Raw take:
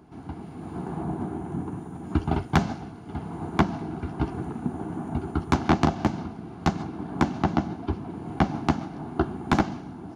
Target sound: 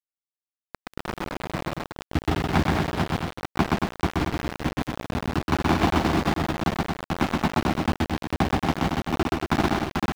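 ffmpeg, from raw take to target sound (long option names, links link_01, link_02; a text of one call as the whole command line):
ffmpeg -i in.wav -filter_complex "[0:a]asplit=2[link_01][link_02];[link_02]adelay=440,lowpass=frequency=1300:poles=1,volume=-3dB,asplit=2[link_03][link_04];[link_04]adelay=440,lowpass=frequency=1300:poles=1,volume=0.24,asplit=2[link_05][link_06];[link_06]adelay=440,lowpass=frequency=1300:poles=1,volume=0.24[link_07];[link_03][link_05][link_07]amix=inputs=3:normalize=0[link_08];[link_01][link_08]amix=inputs=2:normalize=0,acrusher=bits=3:mix=0:aa=0.000001,acrossover=split=4900[link_09][link_10];[link_10]acompressor=threshold=-43dB:ratio=4:attack=1:release=60[link_11];[link_09][link_11]amix=inputs=2:normalize=0,asplit=2[link_12][link_13];[link_13]aecho=0:1:125.4|230.3:0.794|0.562[link_14];[link_12][link_14]amix=inputs=2:normalize=0,volume=-2dB" out.wav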